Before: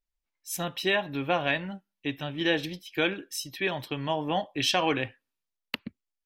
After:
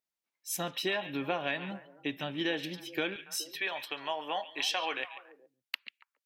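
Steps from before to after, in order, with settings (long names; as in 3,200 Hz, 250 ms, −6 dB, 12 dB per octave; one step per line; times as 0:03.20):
high-pass filter 180 Hz 12 dB per octave, from 0:03.16 650 Hz, from 0:05.05 1,500 Hz
downward compressor 2.5 to 1, threshold −31 dBFS, peak gain reduction 7.5 dB
echo through a band-pass that steps 141 ms, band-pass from 2,800 Hz, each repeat −1.4 octaves, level −10 dB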